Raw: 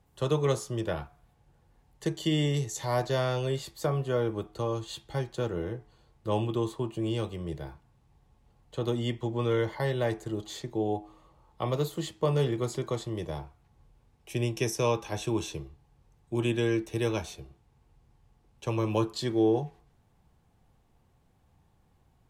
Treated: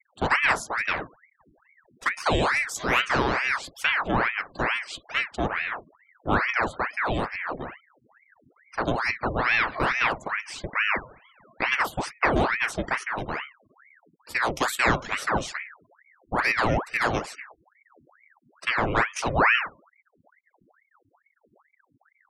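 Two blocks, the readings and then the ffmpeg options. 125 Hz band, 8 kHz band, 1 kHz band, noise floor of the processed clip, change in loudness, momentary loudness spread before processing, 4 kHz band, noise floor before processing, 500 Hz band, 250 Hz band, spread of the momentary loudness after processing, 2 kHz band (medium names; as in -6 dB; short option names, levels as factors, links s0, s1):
-4.5 dB, +3.0 dB, +11.5 dB, -70 dBFS, +5.5 dB, 11 LU, +6.0 dB, -66 dBFS, -1.0 dB, -1.5 dB, 10 LU, +19.0 dB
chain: -af "equalizer=f=860:w=6.1:g=9,afftfilt=real='re*gte(hypot(re,im),0.00447)':imag='im*gte(hypot(re,im),0.00447)':win_size=1024:overlap=0.75,aeval=exprs='val(0)*sin(2*PI*1200*n/s+1200*0.85/2.3*sin(2*PI*2.3*n/s))':c=same,volume=2.11"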